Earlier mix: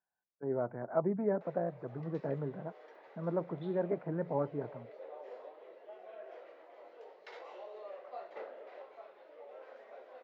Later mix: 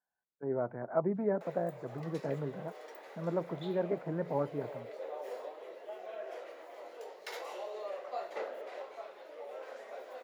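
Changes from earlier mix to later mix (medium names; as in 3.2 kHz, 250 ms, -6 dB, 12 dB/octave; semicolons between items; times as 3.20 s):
background +5.5 dB; master: remove distance through air 210 m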